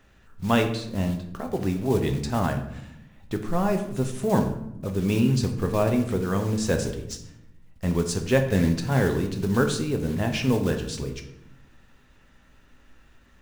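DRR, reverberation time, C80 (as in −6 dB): 4.5 dB, 0.80 s, 12.0 dB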